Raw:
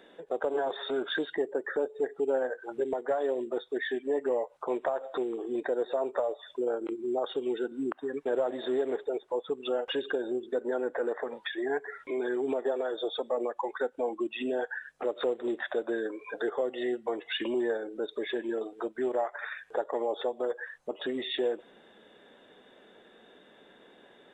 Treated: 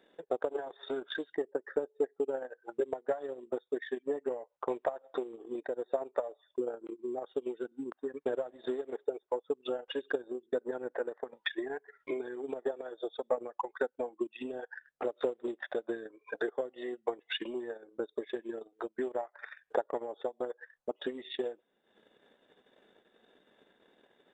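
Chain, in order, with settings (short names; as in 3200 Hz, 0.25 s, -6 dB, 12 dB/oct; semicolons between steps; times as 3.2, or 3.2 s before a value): transient shaper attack +12 dB, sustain -11 dB; noise-modulated level, depth 50%; gain -7.5 dB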